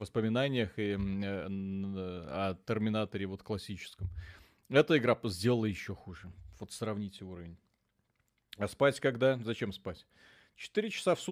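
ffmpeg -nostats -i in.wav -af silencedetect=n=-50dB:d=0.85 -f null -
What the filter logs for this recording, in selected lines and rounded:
silence_start: 7.54
silence_end: 8.53 | silence_duration: 0.98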